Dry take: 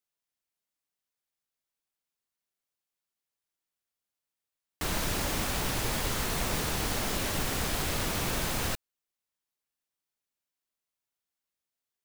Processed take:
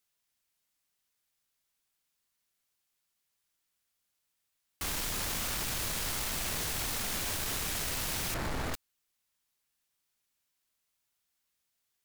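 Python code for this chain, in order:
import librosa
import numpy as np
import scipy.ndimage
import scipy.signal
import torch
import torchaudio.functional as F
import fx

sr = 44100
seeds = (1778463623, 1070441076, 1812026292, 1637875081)

p1 = fx.median_filter(x, sr, points=15, at=(8.34, 8.74))
p2 = fx.peak_eq(p1, sr, hz=470.0, db=-5.5, octaves=2.7)
p3 = fx.fold_sine(p2, sr, drive_db=19, ceiling_db=-17.0)
p4 = p2 + (p3 * librosa.db_to_amplitude(-7.0))
y = p4 * librosa.db_to_amplitude(-8.5)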